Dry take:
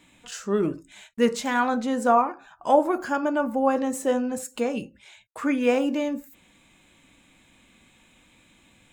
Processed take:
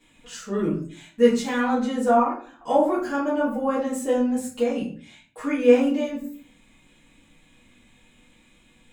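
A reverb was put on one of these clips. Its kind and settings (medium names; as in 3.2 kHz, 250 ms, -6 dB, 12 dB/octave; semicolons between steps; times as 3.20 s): simulated room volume 34 m³, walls mixed, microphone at 1.7 m; trim -10 dB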